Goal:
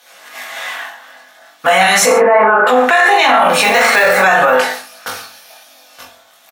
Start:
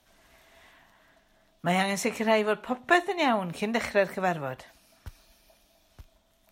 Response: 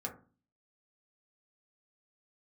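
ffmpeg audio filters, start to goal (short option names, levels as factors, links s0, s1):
-filter_complex "[0:a]highpass=860,agate=range=0.355:threshold=0.001:ratio=16:detection=peak,asettb=1/sr,asplit=3[s0][s1][s2];[s0]atrim=end=2.064[s3];[s1]atrim=start=2.06:end=2.67,asetpts=PTS-STARTPTS,afade=t=in:d=0.004:c=qsin,afade=t=out:st=0.606:d=0.004:c=qsin,lowpass=f=1400:w=0.5412,lowpass=f=1400:w=1.3066[s4];[s2]atrim=start=2.666[s5];[s3][s4]acrossfade=d=0.004:c1=hsin:c2=qsin[s6];[s6][s5]acrossfade=d=0.004:c1=qsin:c2=hsin,asettb=1/sr,asplit=3[s7][s8][s9];[s7]atrim=end=3.624[s10];[s8]atrim=start=3.62:end=4.2,asetpts=PTS-STARTPTS,afade=t=in:d=0.004:c=qsin,afade=t=out:st=0.576:d=0.004:c=qsin,acrusher=bits=4:mode=log:mix=0:aa=0.000001[s11];[s9]atrim=start=4.196[s12];[s10][s11]acrossfade=d=0.004:c1=hsin:c2=qsin[s13];[s13][s12]acrossfade=d=0.004:c1=qsin:c2=hsin,flanger=delay=19.5:depth=3.9:speed=0.42,aecho=1:1:20|43|69.45|99.87|134.8:0.631|0.398|0.251|0.158|0.1[s14];[1:a]atrim=start_sample=2205[s15];[s14][s15]afir=irnorm=-1:irlink=0,alimiter=level_in=63.1:limit=0.891:release=50:level=0:latency=1,volume=0.891"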